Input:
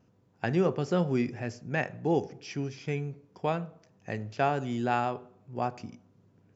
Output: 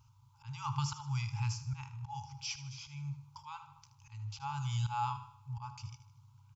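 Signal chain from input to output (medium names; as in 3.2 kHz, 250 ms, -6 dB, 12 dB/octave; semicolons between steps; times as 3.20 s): static phaser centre 740 Hz, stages 4; slow attack 358 ms; on a send: feedback delay 77 ms, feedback 46%, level -13 dB; on the sum: FFT band-reject 140–810 Hz; trim +7.5 dB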